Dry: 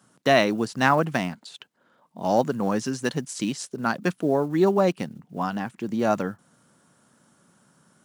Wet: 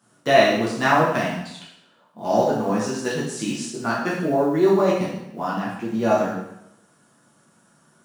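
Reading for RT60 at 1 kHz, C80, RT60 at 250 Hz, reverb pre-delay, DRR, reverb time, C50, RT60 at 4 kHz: 0.80 s, 5.5 dB, 0.80 s, 4 ms, -7.0 dB, 0.80 s, 2.5 dB, 0.75 s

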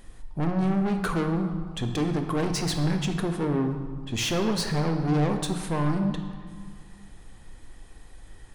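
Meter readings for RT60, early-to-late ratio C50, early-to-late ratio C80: 1.8 s, 7.0 dB, 8.0 dB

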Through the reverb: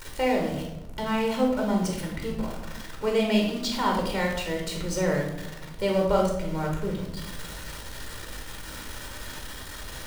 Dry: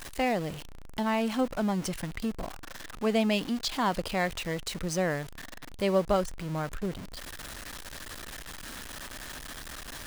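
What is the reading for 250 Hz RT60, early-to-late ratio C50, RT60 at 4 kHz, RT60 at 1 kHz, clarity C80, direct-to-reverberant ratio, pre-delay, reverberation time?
1.7 s, 4.0 dB, 0.65 s, 0.75 s, 7.0 dB, 0.0 dB, 15 ms, 0.95 s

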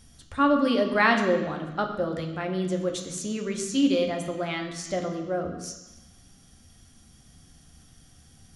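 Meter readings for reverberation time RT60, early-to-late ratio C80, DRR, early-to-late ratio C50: 1.0 s, 8.5 dB, 3.0 dB, 7.0 dB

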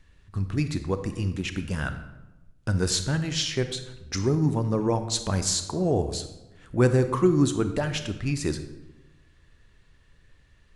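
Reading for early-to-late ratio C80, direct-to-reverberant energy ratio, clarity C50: 12.0 dB, 9.0 dB, 10.5 dB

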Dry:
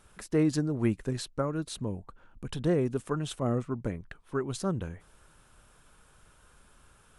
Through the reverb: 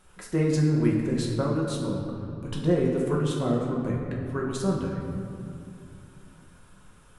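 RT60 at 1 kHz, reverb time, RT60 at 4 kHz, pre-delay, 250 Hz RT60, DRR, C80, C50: 2.3 s, 2.5 s, 1.3 s, 5 ms, 3.7 s, -2.5 dB, 3.5 dB, 2.0 dB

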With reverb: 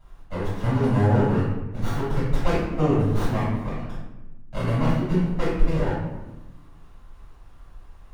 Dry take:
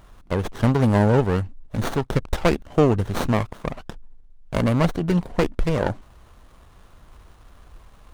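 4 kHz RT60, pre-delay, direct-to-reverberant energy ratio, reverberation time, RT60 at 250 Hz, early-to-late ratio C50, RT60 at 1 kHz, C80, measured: 0.65 s, 4 ms, -12.0 dB, 1.1 s, 1.6 s, -0.5 dB, 1.0 s, 3.0 dB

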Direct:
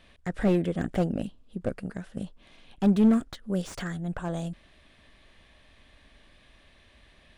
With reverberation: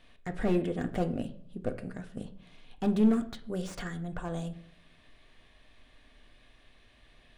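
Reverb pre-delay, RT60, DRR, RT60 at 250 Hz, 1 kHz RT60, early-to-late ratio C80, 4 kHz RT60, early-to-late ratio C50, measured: 3 ms, 0.55 s, 7.0 dB, 0.65 s, 0.50 s, 17.5 dB, 0.40 s, 13.5 dB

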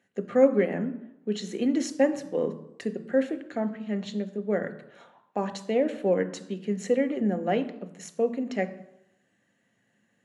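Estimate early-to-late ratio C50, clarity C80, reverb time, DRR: 14.5 dB, 17.0 dB, 0.85 s, 8.5 dB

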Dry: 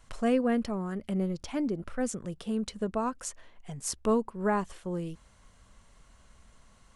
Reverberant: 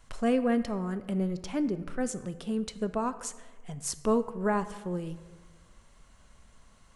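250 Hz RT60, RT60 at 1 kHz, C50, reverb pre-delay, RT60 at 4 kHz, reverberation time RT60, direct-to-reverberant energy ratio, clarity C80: 1.3 s, 1.3 s, 14.0 dB, 4 ms, 0.90 s, 1.4 s, 12.0 dB, 15.0 dB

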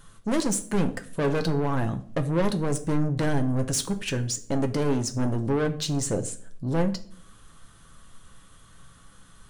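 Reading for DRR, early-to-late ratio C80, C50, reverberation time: 5.5 dB, 18.5 dB, 15.0 dB, 0.55 s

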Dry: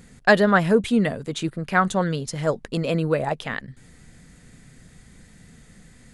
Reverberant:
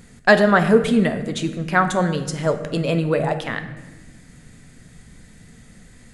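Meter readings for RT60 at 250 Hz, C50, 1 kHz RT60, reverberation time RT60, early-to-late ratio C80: 1.9 s, 10.5 dB, 1.0 s, 1.2 s, 12.0 dB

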